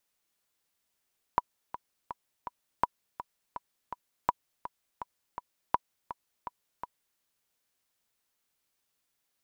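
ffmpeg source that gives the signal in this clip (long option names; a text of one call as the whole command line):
ffmpeg -f lavfi -i "aevalsrc='pow(10,(-10-13.5*gte(mod(t,4*60/165),60/165))/20)*sin(2*PI*977*mod(t,60/165))*exp(-6.91*mod(t,60/165)/0.03)':duration=5.81:sample_rate=44100" out.wav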